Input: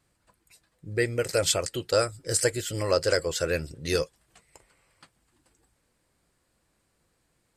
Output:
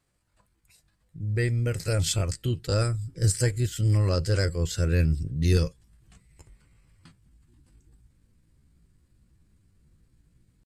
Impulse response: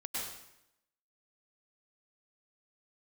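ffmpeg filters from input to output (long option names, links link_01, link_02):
-af "atempo=0.71,acontrast=36,asubboost=boost=11.5:cutoff=190,volume=-9dB"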